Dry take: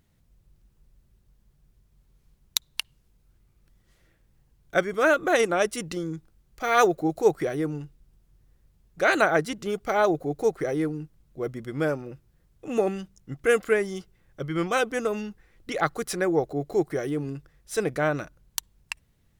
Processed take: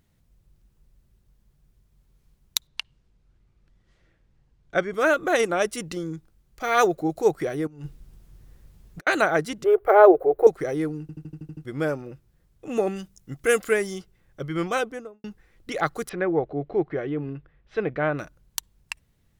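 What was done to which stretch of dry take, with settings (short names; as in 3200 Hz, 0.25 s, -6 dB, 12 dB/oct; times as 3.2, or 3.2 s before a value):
2.67–4.93 air absorption 85 m
7.67–9.07 negative-ratio compressor -40 dBFS, ratio -0.5
9.64–10.47 EQ curve 100 Hz 0 dB, 220 Hz -30 dB, 370 Hz +12 dB, 1700 Hz +4 dB, 6500 Hz -21 dB, 14000 Hz +3 dB
11.01 stutter in place 0.08 s, 8 plays
12.95–13.94 high shelf 5900 Hz -> 3500 Hz +8.5 dB
14.68–15.24 studio fade out
16.09–18.19 LPF 3100 Hz 24 dB/oct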